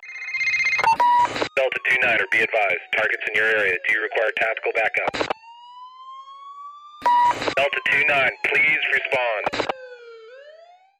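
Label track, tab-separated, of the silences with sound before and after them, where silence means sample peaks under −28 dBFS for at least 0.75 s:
5.320000	7.040000	silence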